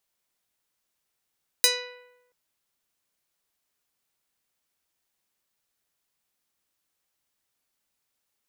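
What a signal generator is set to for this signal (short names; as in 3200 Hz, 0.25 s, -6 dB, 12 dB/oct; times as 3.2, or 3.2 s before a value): plucked string B4, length 0.68 s, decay 0.95 s, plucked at 0.44, medium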